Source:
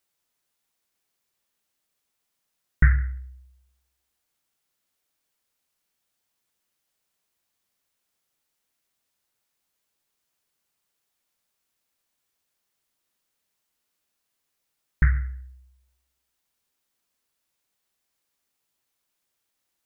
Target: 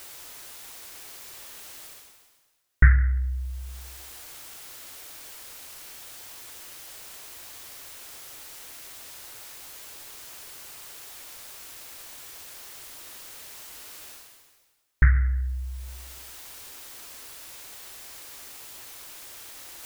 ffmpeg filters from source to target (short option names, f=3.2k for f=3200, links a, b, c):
-af "equalizer=f=190:w=3.2:g=-13,areverse,acompressor=mode=upward:threshold=-20dB:ratio=2.5,areverse,volume=2.5dB"